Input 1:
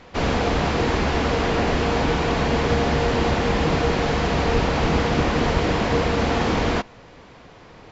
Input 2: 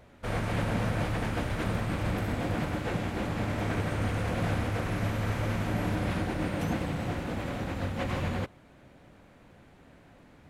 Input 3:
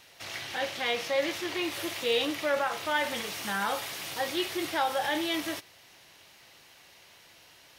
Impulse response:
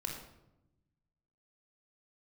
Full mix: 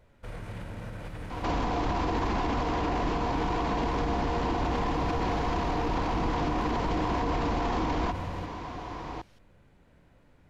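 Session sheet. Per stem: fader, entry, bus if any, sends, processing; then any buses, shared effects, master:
+2.5 dB, 1.30 s, bus A, no send, octaver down 2 oct, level +3 dB; bell 1000 Hz +12 dB 0.29 oct; small resonant body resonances 310/730 Hz, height 9 dB
-11.5 dB, 0.00 s, no bus, send -3 dB, low shelf 62 Hz +9.5 dB; limiter -24 dBFS, peak gain reduction 8.5 dB
-11.0 dB, 1.60 s, bus A, no send, dry
bus A: 0.0 dB, LPF 9900 Hz 12 dB/oct; limiter -13.5 dBFS, peak gain reduction 12.5 dB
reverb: on, RT60 0.90 s, pre-delay 23 ms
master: limiter -21 dBFS, peak gain reduction 8.5 dB

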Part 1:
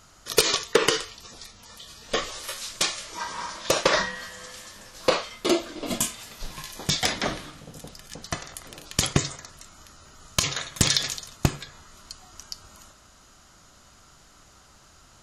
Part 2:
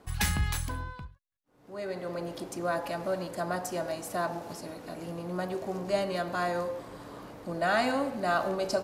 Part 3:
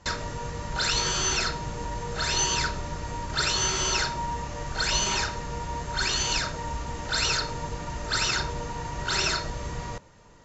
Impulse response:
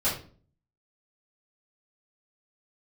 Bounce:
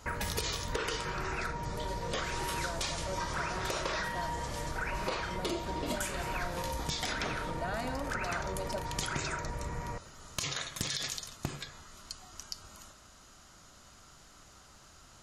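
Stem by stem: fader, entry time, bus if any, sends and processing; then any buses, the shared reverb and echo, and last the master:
-2.5 dB, 0.00 s, no send, limiter -16.5 dBFS, peak gain reduction 8 dB
-7.5 dB, 0.00 s, no send, dry
-3.0 dB, 0.00 s, no send, elliptic low-pass 2400 Hz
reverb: off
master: compressor, threshold -31 dBFS, peak gain reduction 8.5 dB

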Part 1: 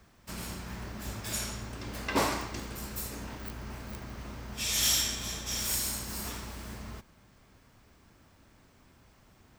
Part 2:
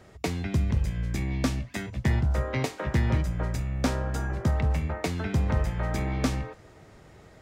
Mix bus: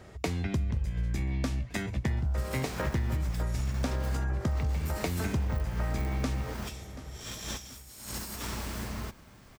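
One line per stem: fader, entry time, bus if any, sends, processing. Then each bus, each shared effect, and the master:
+2.0 dB, 2.10 s, no send, no echo send, negative-ratio compressor -40 dBFS, ratio -0.5; short-mantissa float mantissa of 2-bit
+1.5 dB, 0.00 s, no send, echo send -23 dB, bell 61 Hz +5 dB 1 oct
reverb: off
echo: feedback echo 0.732 s, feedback 43%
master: compressor, threshold -27 dBFS, peak gain reduction 12 dB

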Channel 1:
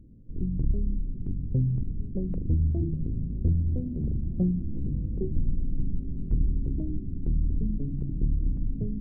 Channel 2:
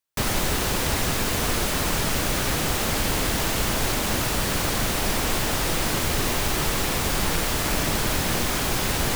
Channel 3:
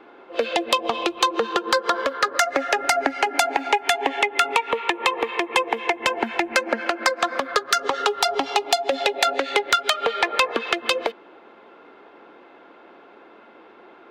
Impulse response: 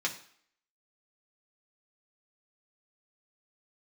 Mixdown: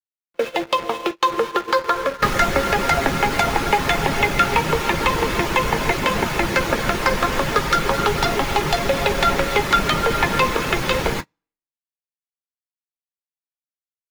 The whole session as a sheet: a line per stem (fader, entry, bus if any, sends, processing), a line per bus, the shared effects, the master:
-15.5 dB, 1.60 s, no send, dry
+0.5 dB, 2.05 s, send -4.5 dB, reverb removal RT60 0.64 s
-1.5 dB, 0.00 s, send -7 dB, bit-crush 5-bit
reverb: on, RT60 0.60 s, pre-delay 3 ms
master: notch 730 Hz, Q 12; gate -23 dBFS, range -29 dB; high shelf 3300 Hz -11 dB

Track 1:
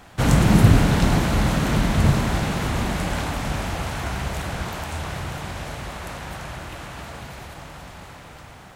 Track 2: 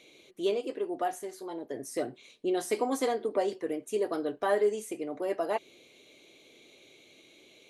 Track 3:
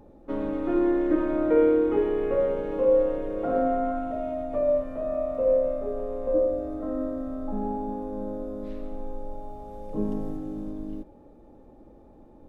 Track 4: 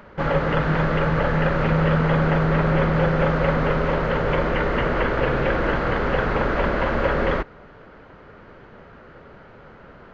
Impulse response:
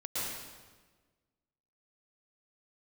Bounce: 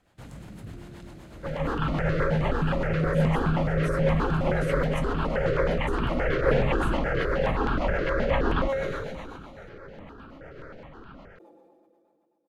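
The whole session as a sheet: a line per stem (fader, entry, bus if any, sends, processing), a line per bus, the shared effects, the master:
-18.0 dB, 0.00 s, bus A, no send, dry
-5.5 dB, 2.00 s, no bus, no send, compressor, threshold -31 dBFS, peak gain reduction 10 dB
-19.5 dB, 0.00 s, bus A, no send, HPF 390 Hz; comb 5.9 ms
+2.5 dB, 1.25 s, no bus, no send, AGC; resonator 270 Hz, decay 0.72 s, mix 70%; step phaser 9.5 Hz 230–2000 Hz
bus A: 0.0 dB, notch 5700 Hz, Q 17; compressor 2:1, threshold -47 dBFS, peak gain reduction 12 dB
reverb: off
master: rotary speaker horn 8 Hz; sustainer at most 24 dB/s

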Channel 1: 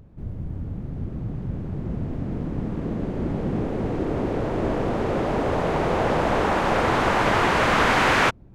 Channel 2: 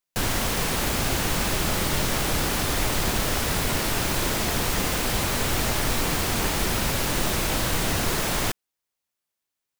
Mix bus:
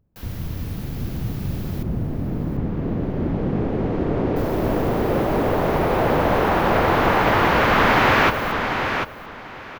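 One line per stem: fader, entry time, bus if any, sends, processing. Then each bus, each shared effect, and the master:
+2.5 dB, 0.00 s, no send, echo send -6.5 dB, gate with hold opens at -26 dBFS
-17.5 dB, 0.00 s, muted 1.83–4.36, no send, echo send -13.5 dB, high shelf 5700 Hz +9 dB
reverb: off
echo: feedback echo 0.742 s, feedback 20%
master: bell 8300 Hz -13.5 dB 0.87 oct

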